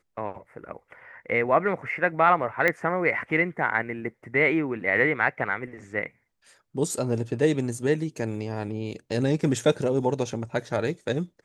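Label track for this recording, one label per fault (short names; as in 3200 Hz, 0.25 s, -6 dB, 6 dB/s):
2.680000	2.680000	pop -10 dBFS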